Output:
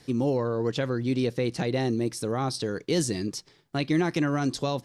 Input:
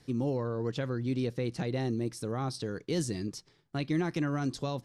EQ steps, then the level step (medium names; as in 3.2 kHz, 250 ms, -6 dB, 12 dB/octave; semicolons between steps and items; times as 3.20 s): bass shelf 200 Hz -7 dB; peaking EQ 1.3 kHz -2 dB; +8.0 dB